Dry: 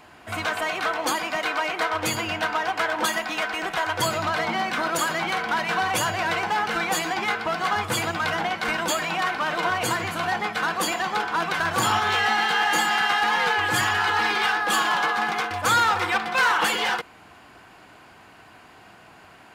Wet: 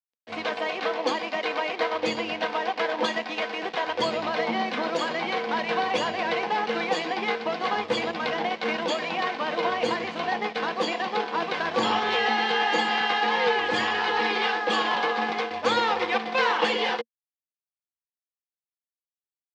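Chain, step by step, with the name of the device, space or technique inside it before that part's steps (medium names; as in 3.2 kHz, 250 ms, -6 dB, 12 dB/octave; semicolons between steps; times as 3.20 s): blown loudspeaker (crossover distortion -37 dBFS; cabinet simulation 230–4900 Hz, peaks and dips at 230 Hz +9 dB, 480 Hz +10 dB, 1.4 kHz -9 dB)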